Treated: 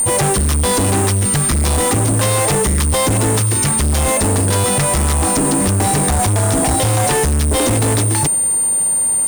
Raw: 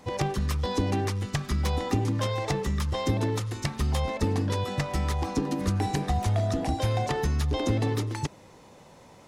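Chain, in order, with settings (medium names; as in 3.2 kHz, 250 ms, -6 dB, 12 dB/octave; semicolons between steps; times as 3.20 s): whistle 9 kHz -33 dBFS; fuzz box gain 38 dB, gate -46 dBFS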